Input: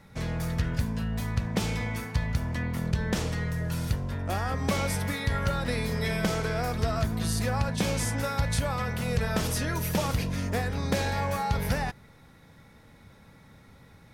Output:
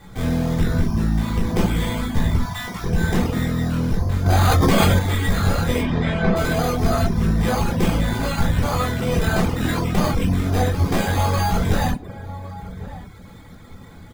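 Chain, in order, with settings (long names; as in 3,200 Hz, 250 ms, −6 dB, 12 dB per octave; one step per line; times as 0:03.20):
bad sample-rate conversion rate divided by 8×, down filtered, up hold
0:02.38–0:02.84: Butterworth high-pass 720 Hz 72 dB per octave
slap from a distant wall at 190 metres, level −17 dB
asymmetric clip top −37.5 dBFS
0:05.80–0:06.35: low-pass filter 4,700 Hz → 2,300 Hz 12 dB per octave
rectangular room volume 480 cubic metres, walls furnished, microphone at 3.7 metres
reverb reduction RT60 0.51 s
0:04.26–0:04.99: envelope flattener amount 100%
level +5.5 dB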